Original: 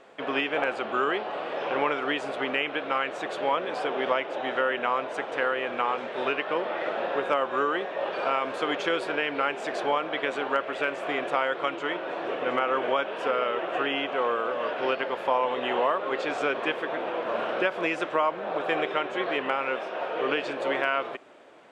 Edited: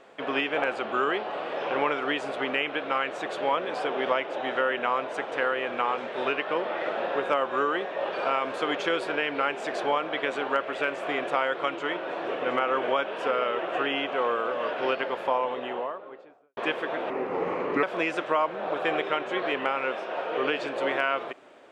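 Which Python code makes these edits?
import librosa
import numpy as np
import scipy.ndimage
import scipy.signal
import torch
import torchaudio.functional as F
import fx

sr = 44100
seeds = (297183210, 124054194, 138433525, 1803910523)

y = fx.studio_fade_out(x, sr, start_s=15.03, length_s=1.54)
y = fx.edit(y, sr, fx.speed_span(start_s=17.1, length_s=0.57, speed=0.78), tone=tone)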